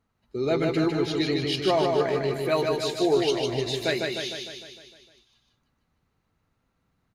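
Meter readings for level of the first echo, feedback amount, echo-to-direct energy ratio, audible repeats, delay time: -3.5 dB, 58%, -1.5 dB, 7, 152 ms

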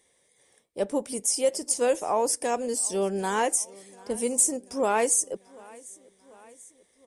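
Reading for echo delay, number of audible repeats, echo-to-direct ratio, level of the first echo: 740 ms, 3, -21.5 dB, -23.5 dB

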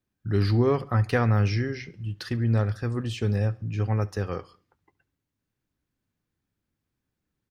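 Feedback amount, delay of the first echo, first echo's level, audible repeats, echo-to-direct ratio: 45%, 70 ms, -23.5 dB, 2, -22.5 dB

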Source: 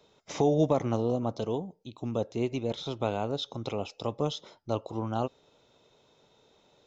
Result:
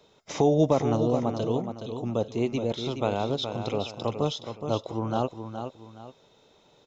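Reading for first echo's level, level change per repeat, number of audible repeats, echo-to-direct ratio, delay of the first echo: -8.0 dB, -9.5 dB, 2, -7.5 dB, 420 ms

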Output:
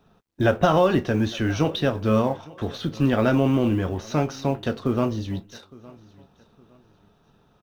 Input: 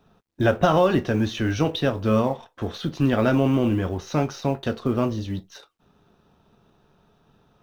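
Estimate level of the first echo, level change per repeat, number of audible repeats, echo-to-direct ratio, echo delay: -22.5 dB, -9.5 dB, 2, -22.0 dB, 862 ms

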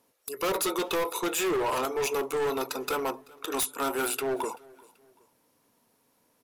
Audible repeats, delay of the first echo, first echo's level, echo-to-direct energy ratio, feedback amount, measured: 2, 384 ms, -24.0 dB, -23.5 dB, 39%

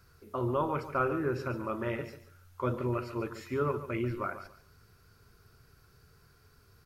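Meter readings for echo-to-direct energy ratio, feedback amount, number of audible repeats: -12.5 dB, 22%, 2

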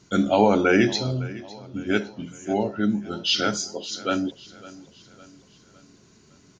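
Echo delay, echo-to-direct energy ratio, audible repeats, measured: 557 ms, -18.0 dB, 3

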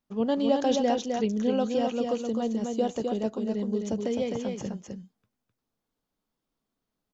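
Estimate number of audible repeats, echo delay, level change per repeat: 1, 258 ms, no regular repeats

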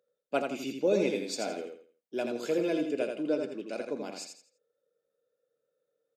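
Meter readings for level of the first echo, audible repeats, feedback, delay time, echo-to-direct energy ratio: -5.5 dB, 3, 30%, 83 ms, -5.0 dB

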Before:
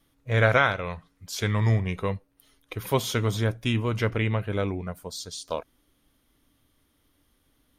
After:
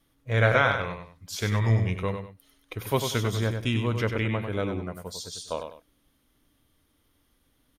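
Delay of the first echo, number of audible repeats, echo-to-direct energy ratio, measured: 97 ms, 2, -6.5 dB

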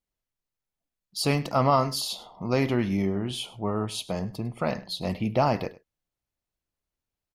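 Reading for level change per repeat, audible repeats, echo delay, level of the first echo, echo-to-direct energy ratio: no regular repeats, 1, 102 ms, -19.5 dB, -19.5 dB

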